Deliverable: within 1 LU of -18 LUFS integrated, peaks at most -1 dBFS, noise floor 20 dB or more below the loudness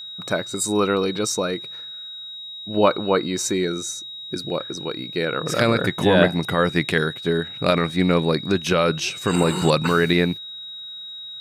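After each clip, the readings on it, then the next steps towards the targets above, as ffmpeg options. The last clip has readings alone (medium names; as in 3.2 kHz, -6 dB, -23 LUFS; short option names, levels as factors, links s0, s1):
steady tone 3.8 kHz; tone level -33 dBFS; loudness -21.5 LUFS; peak level -2.5 dBFS; loudness target -18.0 LUFS
-> -af "bandreject=f=3800:w=30"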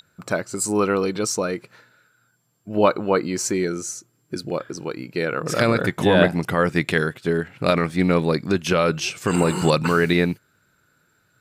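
steady tone not found; loudness -21.5 LUFS; peak level -2.5 dBFS; loudness target -18.0 LUFS
-> -af "volume=1.5,alimiter=limit=0.891:level=0:latency=1"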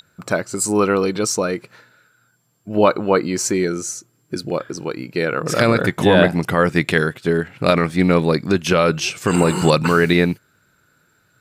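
loudness -18.0 LUFS; peak level -1.0 dBFS; noise floor -62 dBFS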